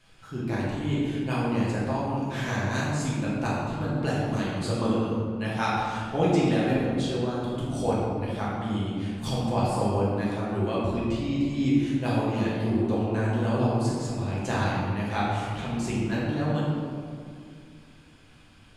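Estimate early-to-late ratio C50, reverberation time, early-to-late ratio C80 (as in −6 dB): −1.5 dB, 2.3 s, 0.5 dB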